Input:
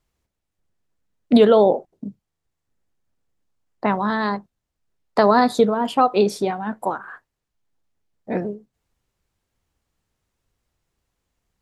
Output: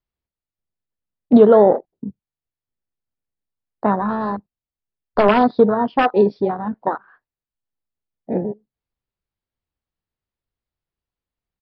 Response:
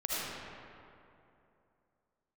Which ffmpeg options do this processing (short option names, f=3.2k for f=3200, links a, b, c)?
-filter_complex "[0:a]asettb=1/sr,asplit=3[a][b][c];[a]atrim=end=4.004[d];[b]atrim=start=4:end=5.29,asetpts=PTS-STARTPTS,afade=t=in:d=0.004:c=qsin,afade=t=out:st=1.286:d=0.004:c=qsin,aeval=exprs='0.75*(cos(1*acos(clip(val(0)/0.75,-1,1)))-cos(1*PI/2))+0.0376*(cos(3*acos(clip(val(0)/0.75,-1,1)))-cos(3*PI/2))+0.106*(cos(4*acos(clip(val(0)/0.75,-1,1)))-cos(4*PI/2))':c=same[e];[c]atrim=start=5.286[f];[d][e]acrossfade=d=0.004:c1=hsin:c2=qsin[g];[g][f]acrossfade=d=0.004:c1=qsin:c2=hsin,acrossover=split=740|2700[h][i][j];[i]aeval=exprs='(mod(5.01*val(0)+1,2)-1)/5.01':c=same[k];[h][k][j]amix=inputs=3:normalize=0,aresample=11025,aresample=44100,afwtdn=0.0708,volume=3dB"